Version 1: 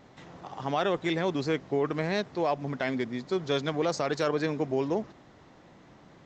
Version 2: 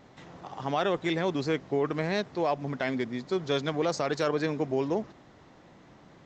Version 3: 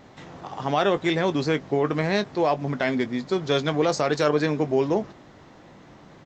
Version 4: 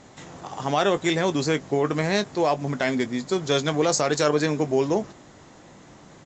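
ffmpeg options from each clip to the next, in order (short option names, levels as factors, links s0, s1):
-af anull
-filter_complex "[0:a]asplit=2[s0][s1];[s1]adelay=20,volume=0.251[s2];[s0][s2]amix=inputs=2:normalize=0,volume=1.88"
-af "lowpass=f=7300:t=q:w=4.9"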